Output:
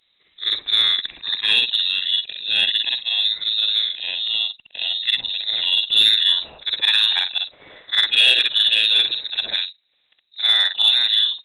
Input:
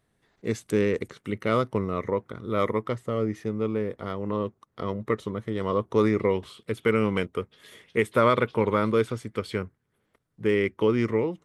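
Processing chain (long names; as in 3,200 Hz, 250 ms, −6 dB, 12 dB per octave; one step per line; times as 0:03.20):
every overlapping window played backwards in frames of 130 ms
voice inversion scrambler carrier 3,900 Hz
harmonic generator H 5 −24 dB, 6 −36 dB, 7 −40 dB, 8 −39 dB, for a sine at −10 dBFS
level +8 dB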